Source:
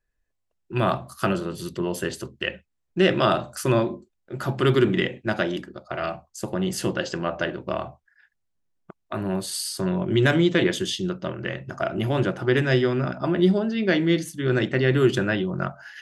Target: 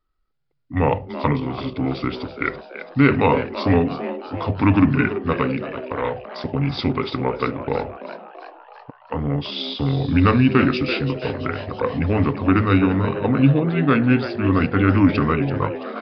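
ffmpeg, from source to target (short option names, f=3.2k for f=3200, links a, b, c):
-filter_complex "[0:a]asetrate=33038,aresample=44100,atempo=1.33484,asplit=2[a][b];[b]asplit=6[c][d][e][f][g][h];[c]adelay=334,afreqshift=120,volume=-12dB[i];[d]adelay=668,afreqshift=240,volume=-16.9dB[j];[e]adelay=1002,afreqshift=360,volume=-21.8dB[k];[f]adelay=1336,afreqshift=480,volume=-26.6dB[l];[g]adelay=1670,afreqshift=600,volume=-31.5dB[m];[h]adelay=2004,afreqshift=720,volume=-36.4dB[n];[i][j][k][l][m][n]amix=inputs=6:normalize=0[o];[a][o]amix=inputs=2:normalize=0,aresample=11025,aresample=44100,volume=4dB"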